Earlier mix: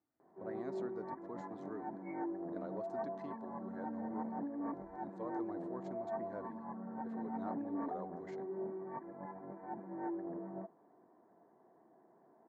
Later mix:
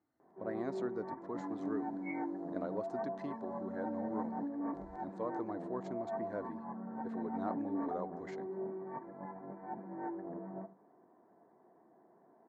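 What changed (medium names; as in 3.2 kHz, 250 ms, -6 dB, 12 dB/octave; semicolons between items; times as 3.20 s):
speech +6.0 dB; second sound +11.0 dB; reverb: on, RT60 0.40 s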